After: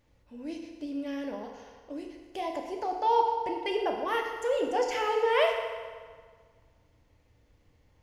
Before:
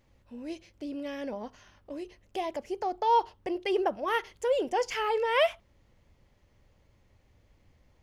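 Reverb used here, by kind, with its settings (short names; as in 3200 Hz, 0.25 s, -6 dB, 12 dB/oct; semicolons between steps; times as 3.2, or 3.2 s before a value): FDN reverb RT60 1.7 s, low-frequency decay 0.7×, high-frequency decay 0.8×, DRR 1.5 dB; gain -2.5 dB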